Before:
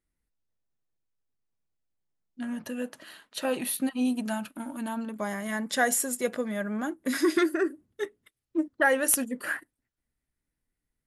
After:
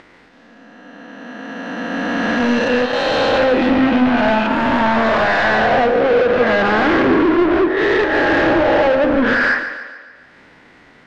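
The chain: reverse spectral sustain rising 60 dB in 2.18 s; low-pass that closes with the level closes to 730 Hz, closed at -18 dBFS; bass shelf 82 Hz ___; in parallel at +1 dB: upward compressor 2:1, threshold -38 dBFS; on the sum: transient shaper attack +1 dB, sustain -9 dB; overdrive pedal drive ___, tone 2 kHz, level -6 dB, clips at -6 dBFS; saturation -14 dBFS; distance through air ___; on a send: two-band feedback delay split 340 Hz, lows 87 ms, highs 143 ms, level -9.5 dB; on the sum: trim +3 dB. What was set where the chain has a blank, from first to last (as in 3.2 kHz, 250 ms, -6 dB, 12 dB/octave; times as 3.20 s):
-11 dB, 28 dB, 170 m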